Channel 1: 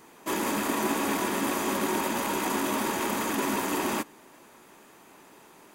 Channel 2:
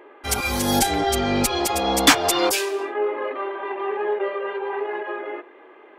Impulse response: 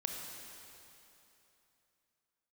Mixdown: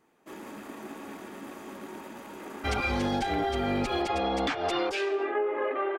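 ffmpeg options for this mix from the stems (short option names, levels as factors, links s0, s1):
-filter_complex "[0:a]highshelf=f=3400:g=-9.5,volume=0.224[s0];[1:a]lowpass=3000,alimiter=limit=0.188:level=0:latency=1:release=425,adelay=2400,volume=1.12[s1];[s0][s1]amix=inputs=2:normalize=0,bandreject=f=1000:w=9.3,acompressor=threshold=0.0562:ratio=6"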